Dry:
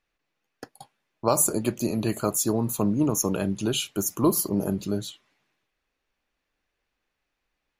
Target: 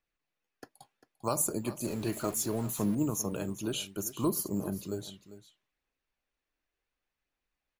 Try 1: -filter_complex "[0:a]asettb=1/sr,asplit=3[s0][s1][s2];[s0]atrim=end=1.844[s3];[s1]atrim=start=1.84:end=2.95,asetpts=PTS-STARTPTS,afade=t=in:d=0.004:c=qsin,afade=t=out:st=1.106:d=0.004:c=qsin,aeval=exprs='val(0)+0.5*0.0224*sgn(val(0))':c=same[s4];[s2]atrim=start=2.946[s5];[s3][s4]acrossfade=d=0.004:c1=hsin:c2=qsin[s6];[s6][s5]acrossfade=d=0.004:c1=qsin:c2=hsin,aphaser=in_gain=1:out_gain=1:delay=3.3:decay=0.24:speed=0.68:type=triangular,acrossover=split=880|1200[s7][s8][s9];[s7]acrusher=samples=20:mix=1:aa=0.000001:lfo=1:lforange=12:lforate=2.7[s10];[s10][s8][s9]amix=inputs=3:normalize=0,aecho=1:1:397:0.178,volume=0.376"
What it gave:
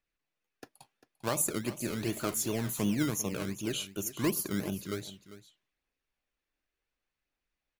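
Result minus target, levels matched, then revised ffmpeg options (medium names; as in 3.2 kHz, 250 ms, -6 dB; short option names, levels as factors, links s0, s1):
decimation with a swept rate: distortion +14 dB
-filter_complex "[0:a]asettb=1/sr,asplit=3[s0][s1][s2];[s0]atrim=end=1.844[s3];[s1]atrim=start=1.84:end=2.95,asetpts=PTS-STARTPTS,afade=t=in:d=0.004:c=qsin,afade=t=out:st=1.106:d=0.004:c=qsin,aeval=exprs='val(0)+0.5*0.0224*sgn(val(0))':c=same[s4];[s2]atrim=start=2.946[s5];[s3][s4]acrossfade=d=0.004:c1=hsin:c2=qsin[s6];[s6][s5]acrossfade=d=0.004:c1=qsin:c2=hsin,aphaser=in_gain=1:out_gain=1:delay=3.3:decay=0.24:speed=0.68:type=triangular,acrossover=split=880|1200[s7][s8][s9];[s7]acrusher=samples=5:mix=1:aa=0.000001:lfo=1:lforange=3:lforate=2.7[s10];[s10][s8][s9]amix=inputs=3:normalize=0,aecho=1:1:397:0.178,volume=0.376"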